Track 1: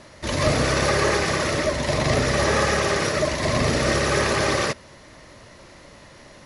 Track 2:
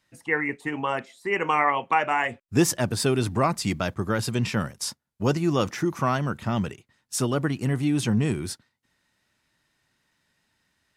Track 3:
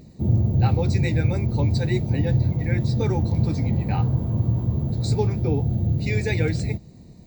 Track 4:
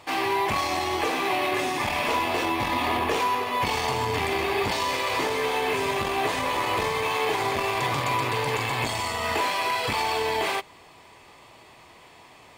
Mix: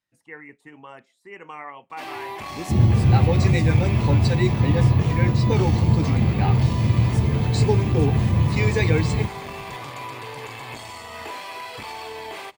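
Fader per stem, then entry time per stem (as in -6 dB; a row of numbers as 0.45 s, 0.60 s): mute, -15.5 dB, +3.0 dB, -9.0 dB; mute, 0.00 s, 2.50 s, 1.90 s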